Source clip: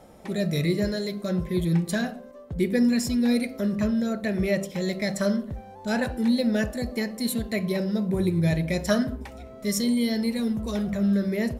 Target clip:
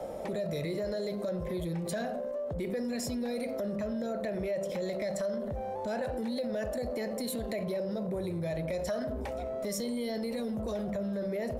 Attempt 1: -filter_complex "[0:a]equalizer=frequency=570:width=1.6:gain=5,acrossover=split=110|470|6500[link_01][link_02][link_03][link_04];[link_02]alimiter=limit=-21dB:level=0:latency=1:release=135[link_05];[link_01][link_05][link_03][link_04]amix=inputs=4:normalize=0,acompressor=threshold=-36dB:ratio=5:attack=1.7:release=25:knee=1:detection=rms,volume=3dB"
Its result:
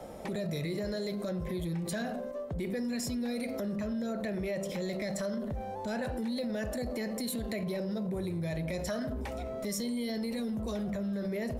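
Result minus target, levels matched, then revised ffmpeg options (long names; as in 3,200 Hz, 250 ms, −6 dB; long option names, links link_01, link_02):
500 Hz band −3.0 dB
-filter_complex "[0:a]equalizer=frequency=570:width=1.6:gain=14,acrossover=split=110|470|6500[link_01][link_02][link_03][link_04];[link_02]alimiter=limit=-21dB:level=0:latency=1:release=135[link_05];[link_01][link_05][link_03][link_04]amix=inputs=4:normalize=0,acompressor=threshold=-36dB:ratio=5:attack=1.7:release=25:knee=1:detection=rms,volume=3dB"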